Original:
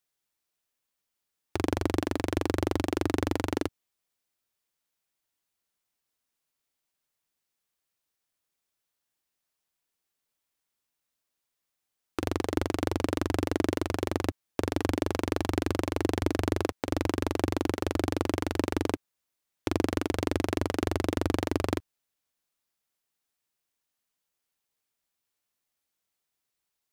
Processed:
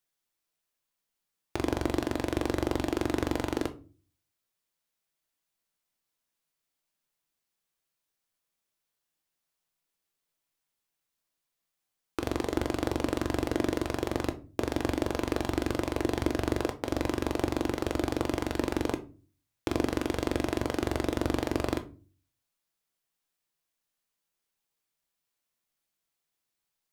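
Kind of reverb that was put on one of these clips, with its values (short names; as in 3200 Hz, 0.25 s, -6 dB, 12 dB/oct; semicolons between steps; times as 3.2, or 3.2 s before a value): shoebox room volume 210 m³, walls furnished, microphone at 0.7 m; gain -1.5 dB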